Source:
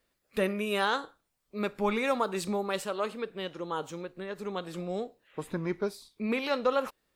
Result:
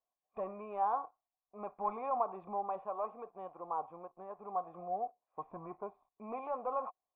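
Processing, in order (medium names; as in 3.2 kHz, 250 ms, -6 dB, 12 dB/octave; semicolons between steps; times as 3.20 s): waveshaping leveller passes 2; cascade formant filter a; distance through air 170 m; trim +3 dB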